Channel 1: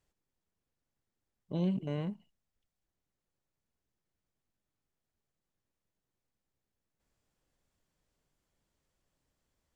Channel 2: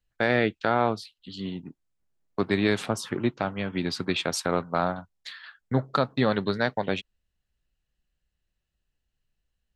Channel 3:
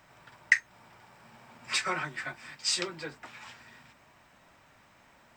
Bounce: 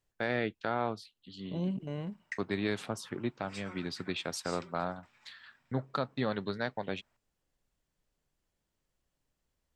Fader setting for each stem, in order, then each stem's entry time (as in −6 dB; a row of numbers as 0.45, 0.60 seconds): −2.5, −9.0, −18.5 decibels; 0.00, 0.00, 1.80 seconds